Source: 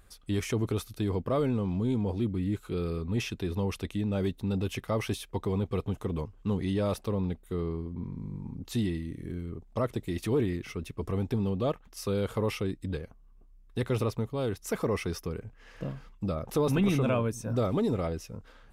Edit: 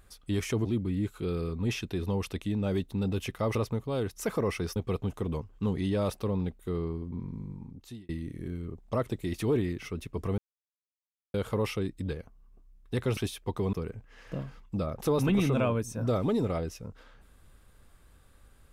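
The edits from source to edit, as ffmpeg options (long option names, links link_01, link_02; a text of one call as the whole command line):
ffmpeg -i in.wav -filter_complex "[0:a]asplit=9[link_01][link_02][link_03][link_04][link_05][link_06][link_07][link_08][link_09];[link_01]atrim=end=0.652[link_10];[link_02]atrim=start=2.138:end=5.042[link_11];[link_03]atrim=start=14.008:end=15.222[link_12];[link_04]atrim=start=5.598:end=8.93,asetpts=PTS-STARTPTS,afade=type=out:start_time=2.582:duration=0.75[link_13];[link_05]atrim=start=8.93:end=11.22,asetpts=PTS-STARTPTS,afade=type=in:duration=0.004:curve=hsin,afade=type=out:start_time=2.286:duration=0.004:curve=hsin[link_14];[link_06]atrim=start=11.22:end=12.18,asetpts=PTS-STARTPTS,volume=0[link_15];[link_07]atrim=start=12.18:end=14.012,asetpts=PTS-STARTPTS,afade=type=in:duration=0.004:curve=hsin[link_16];[link_08]atrim=start=5.038:end=5.602[link_17];[link_09]atrim=start=15.218[link_18];[link_10][link_11]acrossfade=duration=0.004:curve1=hsin:curve2=hsin[link_19];[link_19][link_12]acrossfade=duration=0.004:curve1=hsin:curve2=hsin[link_20];[link_13][link_14][link_15][link_16]concat=n=4:v=0:a=1[link_21];[link_20][link_21]acrossfade=duration=0.004:curve1=hsin:curve2=hsin[link_22];[link_22][link_17]acrossfade=duration=0.004:curve1=hsin:curve2=hsin[link_23];[link_23][link_18]acrossfade=duration=0.004:curve1=hsin:curve2=hsin" out.wav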